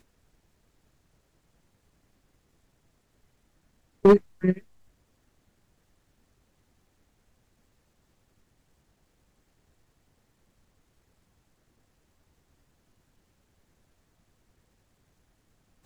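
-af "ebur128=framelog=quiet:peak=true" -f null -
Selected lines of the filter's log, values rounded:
Integrated loudness:
  I:         -22.1 LUFS
  Threshold: -44.4 LUFS
Loudness range:
  LRA:         9.5 LU
  Threshold: -53.6 LUFS
  LRA low:   -36.8 LUFS
  LRA high:  -27.3 LUFS
True peak:
  Peak:       -7.7 dBFS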